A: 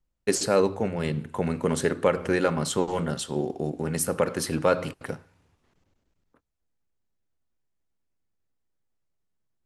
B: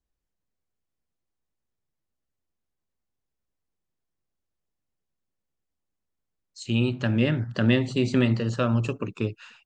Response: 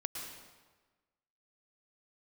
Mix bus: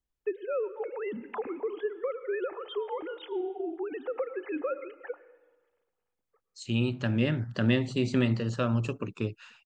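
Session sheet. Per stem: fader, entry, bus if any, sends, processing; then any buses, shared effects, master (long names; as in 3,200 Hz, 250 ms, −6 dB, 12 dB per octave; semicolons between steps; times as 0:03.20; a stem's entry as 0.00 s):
−4.0 dB, 0.00 s, send −12 dB, three sine waves on the formant tracks; comb filter 2.4 ms, depth 32%; downward compressor 6 to 1, threshold −27 dBFS, peak gain reduction 13.5 dB
−4.0 dB, 0.00 s, no send, no processing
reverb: on, RT60 1.3 s, pre-delay 102 ms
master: no processing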